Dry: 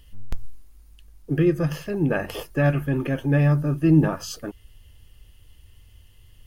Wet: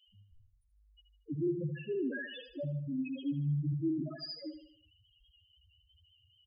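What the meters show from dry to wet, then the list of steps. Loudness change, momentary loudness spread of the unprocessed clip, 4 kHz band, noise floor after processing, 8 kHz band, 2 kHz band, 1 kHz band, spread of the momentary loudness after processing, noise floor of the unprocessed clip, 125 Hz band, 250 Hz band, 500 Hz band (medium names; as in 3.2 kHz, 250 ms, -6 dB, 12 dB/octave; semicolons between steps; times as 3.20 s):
-14.0 dB, 20 LU, -6.5 dB, -71 dBFS, under -35 dB, -14.5 dB, under -25 dB, 10 LU, -52 dBFS, -15.0 dB, -13.0 dB, -13.5 dB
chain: frequency weighting D; peak limiter -19 dBFS, peak gain reduction 11 dB; loudest bins only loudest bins 1; feedback delay 77 ms, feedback 43%, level -9 dB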